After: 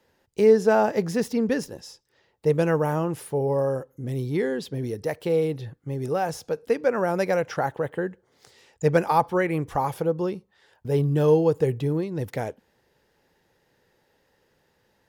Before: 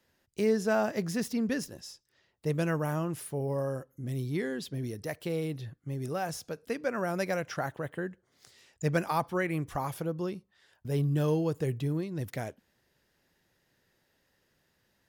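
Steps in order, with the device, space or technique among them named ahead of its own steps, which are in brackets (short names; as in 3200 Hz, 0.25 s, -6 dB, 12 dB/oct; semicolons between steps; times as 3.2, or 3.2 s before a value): inside a helmet (high shelf 5400 Hz -4.5 dB; small resonant body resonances 470/840 Hz, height 8 dB, ringing for 20 ms); gain +4.5 dB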